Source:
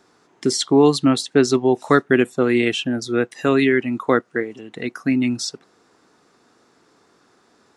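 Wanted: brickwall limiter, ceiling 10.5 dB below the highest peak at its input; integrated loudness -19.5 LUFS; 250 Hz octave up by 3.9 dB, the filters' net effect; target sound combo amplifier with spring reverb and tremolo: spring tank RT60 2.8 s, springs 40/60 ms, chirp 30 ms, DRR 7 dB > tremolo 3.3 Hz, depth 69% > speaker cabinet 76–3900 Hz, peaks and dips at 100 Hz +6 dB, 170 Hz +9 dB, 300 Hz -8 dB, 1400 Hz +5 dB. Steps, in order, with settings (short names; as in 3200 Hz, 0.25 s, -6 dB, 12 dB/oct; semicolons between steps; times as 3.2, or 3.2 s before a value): bell 250 Hz +7.5 dB; limiter -9.5 dBFS; spring tank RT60 2.8 s, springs 40/60 ms, chirp 30 ms, DRR 7 dB; tremolo 3.3 Hz, depth 69%; speaker cabinet 76–3900 Hz, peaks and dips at 100 Hz +6 dB, 170 Hz +9 dB, 300 Hz -8 dB, 1400 Hz +5 dB; gain +5 dB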